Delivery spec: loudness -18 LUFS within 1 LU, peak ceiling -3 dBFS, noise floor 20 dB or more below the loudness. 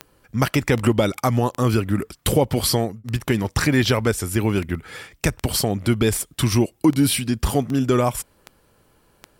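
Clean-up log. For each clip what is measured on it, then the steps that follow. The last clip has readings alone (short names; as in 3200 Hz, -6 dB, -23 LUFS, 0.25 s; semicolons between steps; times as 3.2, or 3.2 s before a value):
clicks 13; loudness -21.0 LUFS; peak -5.0 dBFS; loudness target -18.0 LUFS
-> de-click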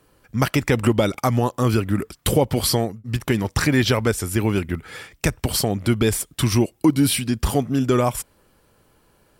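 clicks 0; loudness -21.0 LUFS; peak -5.0 dBFS; loudness target -18.0 LUFS
-> gain +3 dB; limiter -3 dBFS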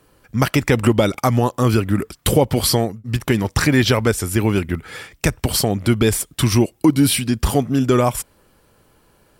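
loudness -18.5 LUFS; peak -3.0 dBFS; noise floor -57 dBFS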